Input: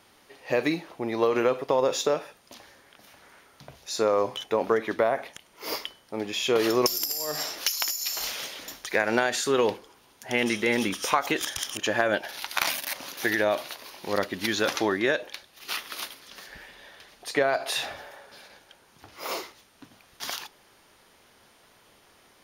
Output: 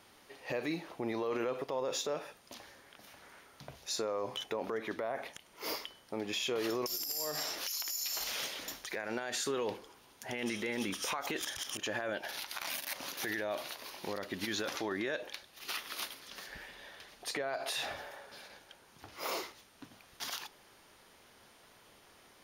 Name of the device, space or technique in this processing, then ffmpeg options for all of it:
stacked limiters: -af "alimiter=limit=-12.5dB:level=0:latency=1:release=151,alimiter=limit=-18dB:level=0:latency=1:release=41,alimiter=limit=-23.5dB:level=0:latency=1:release=126,volume=-2.5dB"

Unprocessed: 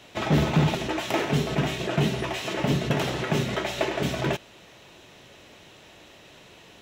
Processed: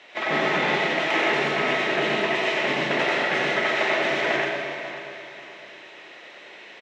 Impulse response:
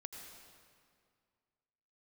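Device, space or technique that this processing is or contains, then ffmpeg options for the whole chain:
station announcement: -filter_complex "[0:a]highpass=420,lowpass=4300,equalizer=frequency=2000:width_type=o:width=0.42:gain=9,aecho=1:1:90.38|125.4:0.708|0.631[link_01];[1:a]atrim=start_sample=2205[link_02];[link_01][link_02]afir=irnorm=-1:irlink=0,aecho=1:1:542|1084|1626:0.224|0.0784|0.0274,volume=6dB"

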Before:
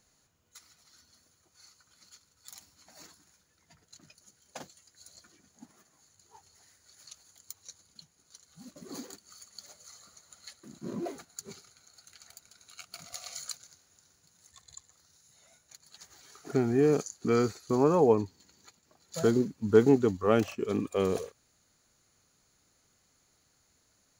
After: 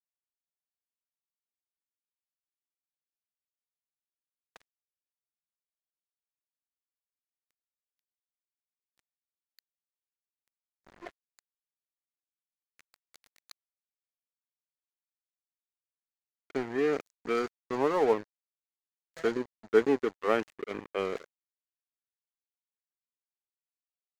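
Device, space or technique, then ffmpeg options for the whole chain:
pocket radio on a weak battery: -af "highpass=330,lowpass=4100,aeval=exprs='sgn(val(0))*max(abs(val(0))-0.0141,0)':channel_layout=same,equalizer=frequency=1900:width_type=o:width=0.59:gain=7"

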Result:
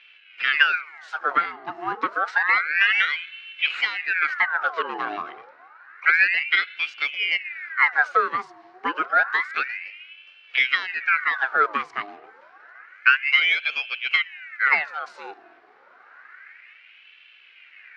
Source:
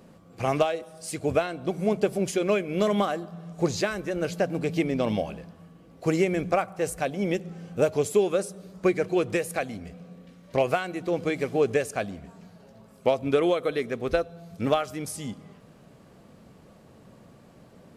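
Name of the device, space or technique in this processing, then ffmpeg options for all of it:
voice changer toy: -filter_complex "[0:a]aeval=exprs='val(0)*sin(2*PI*1700*n/s+1700*0.7/0.29*sin(2*PI*0.29*n/s))':channel_layout=same,highpass=540,equalizer=frequency=610:width_type=q:width=4:gain=-5,equalizer=frequency=950:width_type=q:width=4:gain=-7,equalizer=frequency=1500:width_type=q:width=4:gain=8,equalizer=frequency=2100:width_type=q:width=4:gain=4,equalizer=frequency=3400:width_type=q:width=4:gain=-7,lowpass=frequency=3900:width=0.5412,lowpass=frequency=3900:width=1.3066,asettb=1/sr,asplit=3[link_01][link_02][link_03];[link_01]atrim=end=3.134[link_04];[link_02]atrim=start=3.13:end=3.67,asetpts=PTS-STARTPTS,afade=type=in:duration=0.004:curve=qsin,afade=type=out:start_time=0.536:duration=0.004:curve=qsin,bass=frequency=250:gain=13,treble=frequency=4000:gain=1[link_05];[link_03]atrim=start=3.666[link_06];[link_04][link_05]acrossfade=duration=0.004:curve1=hsin:curve2=qsin[link_07];[link_07][link_06]acrossfade=duration=0.004:curve1=qsin:curve2=hsin,volume=4.5dB"

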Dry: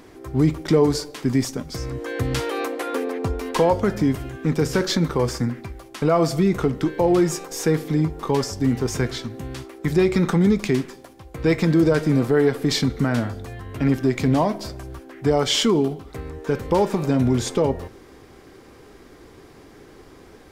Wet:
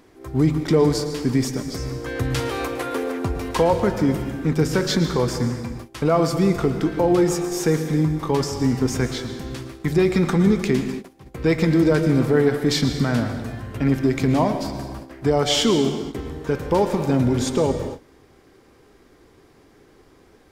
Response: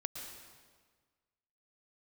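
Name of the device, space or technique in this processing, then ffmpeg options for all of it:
keyed gated reverb: -filter_complex "[0:a]asplit=3[link_01][link_02][link_03];[1:a]atrim=start_sample=2205[link_04];[link_02][link_04]afir=irnorm=-1:irlink=0[link_05];[link_03]apad=whole_len=904742[link_06];[link_05][link_06]sidechaingate=range=-24dB:threshold=-40dB:ratio=16:detection=peak,volume=4dB[link_07];[link_01][link_07]amix=inputs=2:normalize=0,volume=-7dB"

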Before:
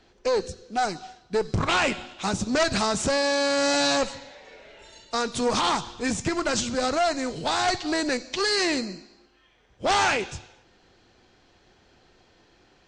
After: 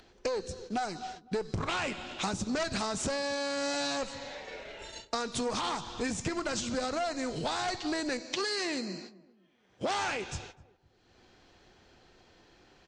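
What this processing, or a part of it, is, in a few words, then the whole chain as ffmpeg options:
upward and downward compression: -filter_complex "[0:a]agate=range=-31dB:threshold=-48dB:ratio=16:detection=peak,acompressor=mode=upward:threshold=-43dB:ratio=2.5,acompressor=threshold=-35dB:ratio=6,asettb=1/sr,asplit=3[link_01][link_02][link_03];[link_01]atrim=end=8.204[link_04];[link_02]atrim=start=8.2:end=9.98,asetpts=PTS-STARTPTS,afade=type=in:duration=0.004:curve=qsin,afade=type=out:start_time=1.776:duration=0.004:curve=qsin,highpass=130[link_05];[link_03]atrim=start=9.976[link_06];[link_04][link_05]acrossfade=duration=0.004:curve1=hsin:curve2=qsin[link_07];[link_07][link_06]acrossfade=duration=0.004:curve1=qsin:curve2=hsin,asplit=2[link_08][link_09];[link_09]adelay=253,lowpass=frequency=900:poles=1,volume=-17dB,asplit=2[link_10][link_11];[link_11]adelay=253,lowpass=frequency=900:poles=1,volume=0.33,asplit=2[link_12][link_13];[link_13]adelay=253,lowpass=frequency=900:poles=1,volume=0.33[link_14];[link_08][link_10][link_12][link_14]amix=inputs=4:normalize=0,volume=4dB"

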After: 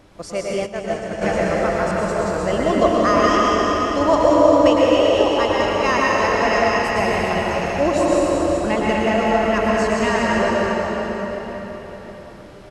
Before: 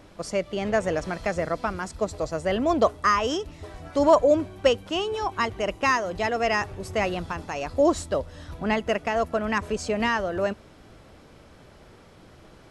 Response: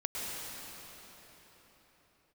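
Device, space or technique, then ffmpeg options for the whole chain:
cave: -filter_complex "[0:a]aecho=1:1:394:0.335[link_01];[1:a]atrim=start_sample=2205[link_02];[link_01][link_02]afir=irnorm=-1:irlink=0,asplit=3[link_03][link_04][link_05];[link_03]afade=type=out:start_time=0.65:duration=0.02[link_06];[link_04]agate=range=-33dB:threshold=-14dB:ratio=3:detection=peak,afade=type=in:start_time=0.65:duration=0.02,afade=type=out:start_time=1.21:duration=0.02[link_07];[link_05]afade=type=in:start_time=1.21:duration=0.02[link_08];[link_06][link_07][link_08]amix=inputs=3:normalize=0,volume=2dB"

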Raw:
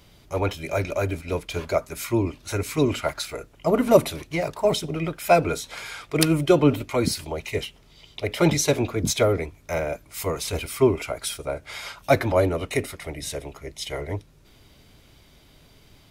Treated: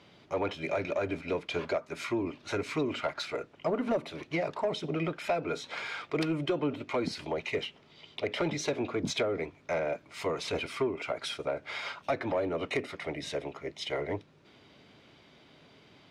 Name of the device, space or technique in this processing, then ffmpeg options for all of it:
AM radio: -af "highpass=180,lowpass=3600,acompressor=threshold=-26dB:ratio=5,asoftclip=type=tanh:threshold=-20dB"

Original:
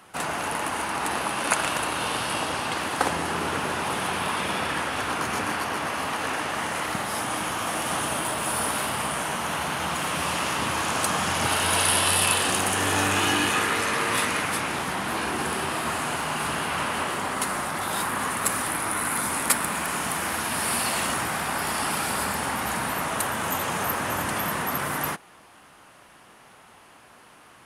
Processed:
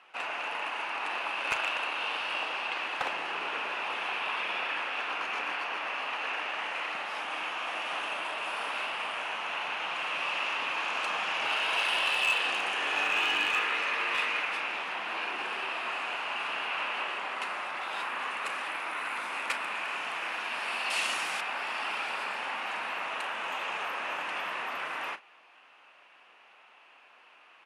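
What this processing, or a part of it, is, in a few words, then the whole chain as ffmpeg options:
megaphone: -filter_complex "[0:a]highpass=540,lowpass=3600,equalizer=frequency=2600:width_type=o:width=0.4:gain=11,asoftclip=type=hard:threshold=-14dB,asplit=2[link_01][link_02];[link_02]adelay=36,volume=-13dB[link_03];[link_01][link_03]amix=inputs=2:normalize=0,asettb=1/sr,asplit=3[link_04][link_05][link_06];[link_04]atrim=end=20.904[link_07];[link_05]atrim=start=20.9:end=21.41,asetpts=PTS-STARTPTS,afade=type=in:duration=0.004:curve=qsin,afade=type=out:start_time=0.506:duration=0.004:curve=qsin,bass=frequency=250:gain=4,treble=frequency=4000:gain=15[link_08];[link_06]atrim=start=21.406[link_09];[link_07][link_08]acrossfade=duration=0.004:curve1=hsin:curve2=qsin[link_10];[link_10][link_09]acrossfade=duration=0.004:curve1=qsin:curve2=hsin,volume=-7dB"

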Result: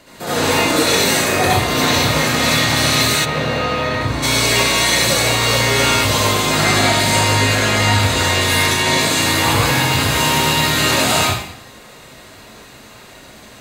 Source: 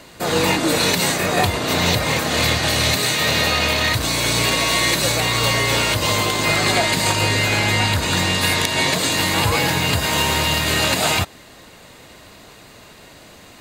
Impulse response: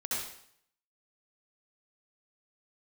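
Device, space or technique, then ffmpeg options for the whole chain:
bathroom: -filter_complex "[1:a]atrim=start_sample=2205[link_01];[0:a][link_01]afir=irnorm=-1:irlink=0,asplit=3[link_02][link_03][link_04];[link_02]afade=type=out:start_time=3.24:duration=0.02[link_05];[link_03]lowpass=frequency=1100:poles=1,afade=type=in:start_time=3.24:duration=0.02,afade=type=out:start_time=4.22:duration=0.02[link_06];[link_04]afade=type=in:start_time=4.22:duration=0.02[link_07];[link_05][link_06][link_07]amix=inputs=3:normalize=0,volume=-1dB"

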